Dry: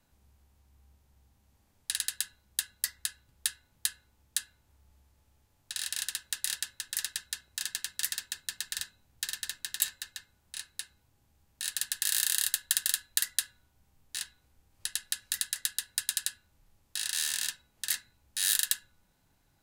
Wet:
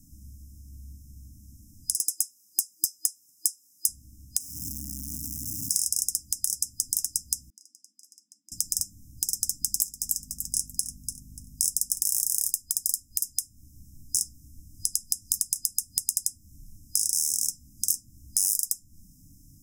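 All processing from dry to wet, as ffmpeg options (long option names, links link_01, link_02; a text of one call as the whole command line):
ffmpeg -i in.wav -filter_complex "[0:a]asettb=1/sr,asplit=3[link_01][link_02][link_03];[link_01]atrim=end=1.944[link_04];[link_02]atrim=start=1.94:end=3.89,asetpts=PTS-STARTPTS,afade=type=in:duration=0.004:curve=qsin,afade=type=out:start_time=1.946:duration=0.004:curve=qsin,highpass=1000,volume=24dB,asoftclip=hard,volume=-24dB[link_05];[link_03]atrim=start=3.886[link_06];[link_04][link_05]acrossfade=duration=0.004:curve1=hsin:curve2=qsin[link_07];[link_07][link_06]acrossfade=duration=0.004:curve1=qsin:curve2=hsin,asettb=1/sr,asplit=3[link_08][link_09][link_10];[link_08]atrim=end=4.404[link_11];[link_09]atrim=start=4.4:end=5.8,asetpts=PTS-STARTPTS,afade=type=in:duration=0.004:curve=qsin,afade=type=out:start_time=1.396:duration=0.004:curve=qsin,aeval=exprs='val(0)+0.5*0.01*sgn(val(0))':channel_layout=same,highpass=frequency=340:poles=1,equalizer=frequency=2200:width=1.2:gain=-13[link_12];[link_10]atrim=start=5.796[link_13];[link_11][link_12]acrossfade=duration=0.004:curve1=hsin:curve2=qsin[link_14];[link_14][link_13]acrossfade=duration=0.004:curve1=qsin:curve2=hsin,asettb=1/sr,asplit=3[link_15][link_16][link_17];[link_15]atrim=end=7.504[link_18];[link_16]atrim=start=7.5:end=8.52,asetpts=PTS-STARTPTS,afade=type=in:duration=0.004:curve=qsin,afade=type=out:start_time=1.016:duration=0.004:curve=qsin,acompressor=threshold=-35dB:ratio=12:attack=3.2:release=140:knee=1:detection=peak,asplit=3[link_19][link_20][link_21];[link_19]bandpass=frequency=530:width_type=q:width=8,volume=0dB[link_22];[link_20]bandpass=frequency=1840:width_type=q:width=8,volume=-6dB[link_23];[link_21]bandpass=frequency=2480:width_type=q:width=8,volume=-9dB[link_24];[link_22][link_23][link_24]amix=inputs=3:normalize=0,afreqshift=130[link_25];[link_17]atrim=start=8.516[link_26];[link_18][link_25]acrossfade=duration=0.004:curve1=hsin:curve2=qsin[link_27];[link_27][link_26]acrossfade=duration=0.004:curve1=qsin:curve2=hsin,asettb=1/sr,asplit=3[link_28][link_29][link_30];[link_28]atrim=end=9.604[link_31];[link_29]atrim=start=9.6:end=12.52,asetpts=PTS-STARTPTS,afade=type=in:duration=0.004:curve=qsin,afade=type=out:start_time=2.916:duration=0.004:curve=qsin,aeval=exprs='val(0)+0.000562*(sin(2*PI*50*n/s)+sin(2*PI*2*50*n/s)/2+sin(2*PI*3*50*n/s)/3+sin(2*PI*4*50*n/s)/4+sin(2*PI*5*50*n/s)/5)':channel_layout=same,aecho=1:1:292|584|876:0.282|0.0676|0.0162,atrim=end_sample=128772[link_32];[link_30]atrim=start=12.516[link_33];[link_31][link_32]acrossfade=duration=0.004:curve1=hsin:curve2=qsin[link_34];[link_34][link_33]acrossfade=duration=0.004:curve1=qsin:curve2=hsin,afftfilt=real='re*(1-between(b*sr/4096,320,5000))':imag='im*(1-between(b*sr/4096,320,5000))':win_size=4096:overlap=0.75,acompressor=threshold=-39dB:ratio=10,alimiter=level_in=19dB:limit=-1dB:release=50:level=0:latency=1,volume=-1dB" out.wav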